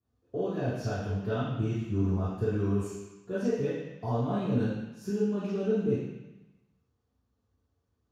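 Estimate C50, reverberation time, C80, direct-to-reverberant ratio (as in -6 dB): -1.5 dB, 1.0 s, 2.5 dB, -13.0 dB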